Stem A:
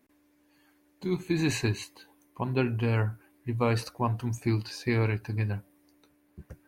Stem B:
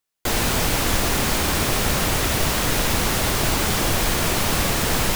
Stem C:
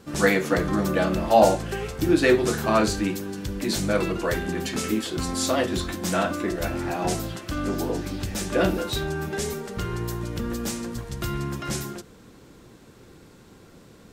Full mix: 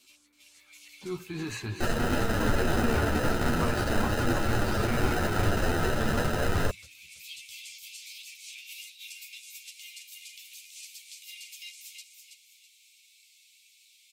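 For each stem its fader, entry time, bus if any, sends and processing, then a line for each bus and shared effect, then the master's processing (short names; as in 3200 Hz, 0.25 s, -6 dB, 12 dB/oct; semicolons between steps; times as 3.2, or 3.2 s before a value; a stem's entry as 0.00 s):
-3.5 dB, 0.00 s, no send, echo send -8 dB, limiter -19.5 dBFS, peak gain reduction 6.5 dB
-4.0 dB, 1.55 s, no send, no echo send, sample-and-hold 39×
-1.5 dB, 0.00 s, no send, echo send -6.5 dB, Chebyshev high-pass 2200 Hz, order 8; negative-ratio compressor -44 dBFS, ratio -1; auto duck -18 dB, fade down 0.30 s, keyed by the first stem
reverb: off
echo: feedback echo 0.327 s, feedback 34%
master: bell 1300 Hz +11 dB 0.49 oct; chorus voices 4, 0.43 Hz, delay 11 ms, depth 2.7 ms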